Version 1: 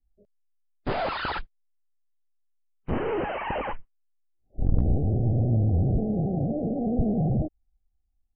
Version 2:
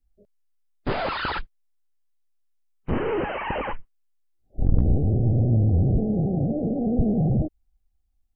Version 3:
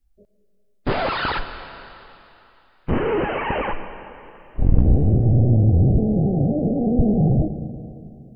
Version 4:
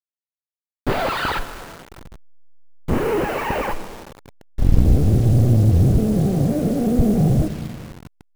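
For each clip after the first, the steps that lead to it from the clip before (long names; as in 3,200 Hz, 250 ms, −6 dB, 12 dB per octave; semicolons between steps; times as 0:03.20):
dynamic equaliser 710 Hz, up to −4 dB, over −44 dBFS, Q 2.6; level +3 dB
convolution reverb RT60 3.0 s, pre-delay 80 ms, DRR 10 dB; level +4 dB
hold until the input has moved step −33 dBFS; level +1 dB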